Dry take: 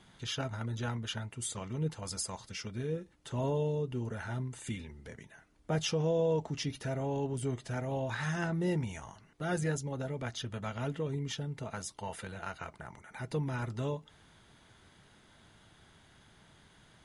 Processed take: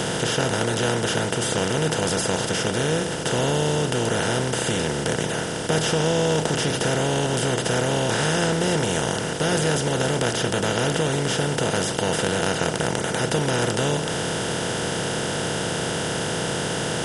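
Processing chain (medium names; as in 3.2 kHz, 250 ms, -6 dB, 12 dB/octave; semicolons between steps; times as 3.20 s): spectral levelling over time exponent 0.2; trim +4 dB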